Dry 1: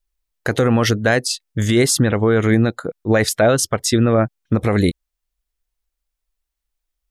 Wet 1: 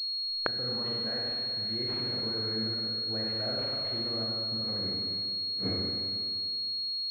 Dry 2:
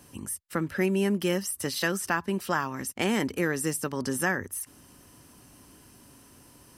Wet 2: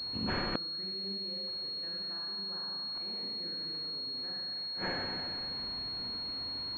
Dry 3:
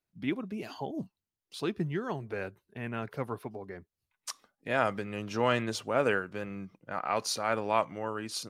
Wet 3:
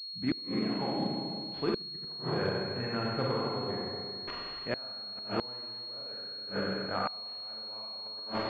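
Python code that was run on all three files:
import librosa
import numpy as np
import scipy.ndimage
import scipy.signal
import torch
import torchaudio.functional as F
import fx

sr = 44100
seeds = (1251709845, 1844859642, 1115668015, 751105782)

y = fx.rev_schroeder(x, sr, rt60_s=2.2, comb_ms=32, drr_db=-4.5)
y = fx.gate_flip(y, sr, shuts_db=-18.0, range_db=-27)
y = fx.pwm(y, sr, carrier_hz=4300.0)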